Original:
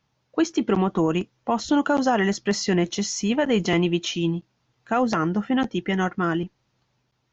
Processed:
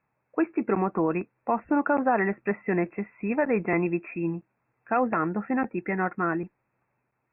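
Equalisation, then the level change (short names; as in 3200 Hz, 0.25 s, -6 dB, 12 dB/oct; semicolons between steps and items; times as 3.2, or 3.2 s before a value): brick-wall FIR low-pass 2700 Hz; air absorption 160 m; low shelf 210 Hz -11.5 dB; 0.0 dB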